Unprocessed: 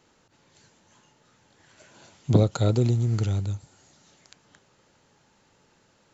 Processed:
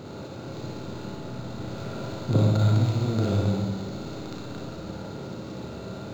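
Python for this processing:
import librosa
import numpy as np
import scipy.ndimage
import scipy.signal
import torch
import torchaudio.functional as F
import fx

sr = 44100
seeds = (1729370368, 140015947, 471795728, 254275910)

y = fx.bin_compress(x, sr, power=0.4)
y = fx.peak_eq(y, sr, hz=400.0, db=-11.5, octaves=1.2, at=(2.37, 2.96))
y = fx.room_flutter(y, sr, wall_m=9.8, rt60_s=0.5)
y = fx.rev_schroeder(y, sr, rt60_s=1.2, comb_ms=28, drr_db=-1.5)
y = np.interp(np.arange(len(y)), np.arange(len(y))[::4], y[::4])
y = y * 10.0 ** (-6.5 / 20.0)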